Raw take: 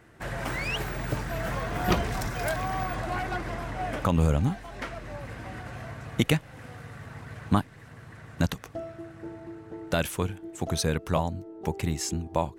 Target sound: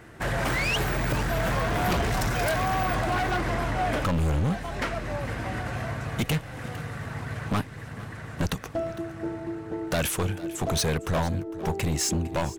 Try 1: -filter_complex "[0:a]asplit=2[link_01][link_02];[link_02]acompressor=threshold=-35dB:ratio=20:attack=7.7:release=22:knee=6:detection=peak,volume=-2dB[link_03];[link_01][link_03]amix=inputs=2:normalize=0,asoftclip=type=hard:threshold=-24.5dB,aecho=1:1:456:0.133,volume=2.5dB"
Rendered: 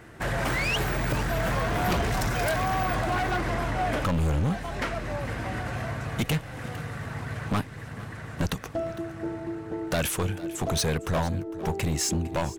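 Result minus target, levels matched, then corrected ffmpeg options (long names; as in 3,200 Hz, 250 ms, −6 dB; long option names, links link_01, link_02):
downward compressor: peak gain reduction +5.5 dB
-filter_complex "[0:a]asplit=2[link_01][link_02];[link_02]acompressor=threshold=-29dB:ratio=20:attack=7.7:release=22:knee=6:detection=peak,volume=-2dB[link_03];[link_01][link_03]amix=inputs=2:normalize=0,asoftclip=type=hard:threshold=-24.5dB,aecho=1:1:456:0.133,volume=2.5dB"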